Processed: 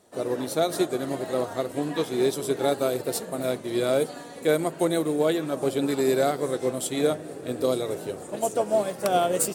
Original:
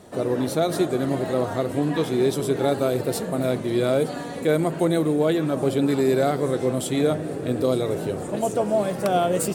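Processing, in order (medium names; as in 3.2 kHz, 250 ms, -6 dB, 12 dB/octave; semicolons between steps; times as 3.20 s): tone controls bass -7 dB, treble +5 dB; upward expansion 1.5:1, over -41 dBFS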